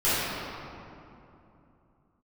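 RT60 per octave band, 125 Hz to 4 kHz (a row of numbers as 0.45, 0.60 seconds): 3.8, 3.7, 2.9, 2.8, 2.1, 1.5 seconds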